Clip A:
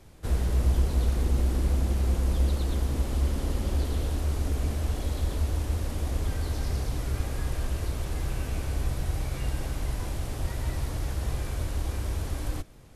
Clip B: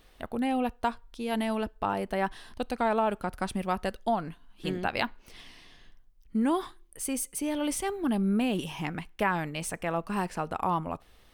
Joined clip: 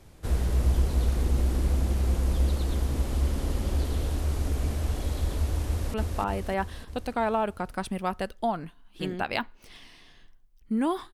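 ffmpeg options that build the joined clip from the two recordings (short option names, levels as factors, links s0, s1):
-filter_complex "[0:a]apad=whole_dur=11.13,atrim=end=11.13,atrim=end=5.942[s0];[1:a]atrim=start=1.578:end=6.77[s1];[s0][s1]acrossfade=d=0.004:c1=hsin:c2=hsin,asplit=2[s2][s3];[s3]afade=t=in:st=5.67:d=0.01,afade=t=out:st=5.94:d=0.01,aecho=0:1:300|600|900|1200|1500|1800|2100|2400|2700:0.794328|0.476597|0.285958|0.171575|0.102945|0.061767|0.0370602|0.0222361|0.0133417[s4];[s2][s4]amix=inputs=2:normalize=0"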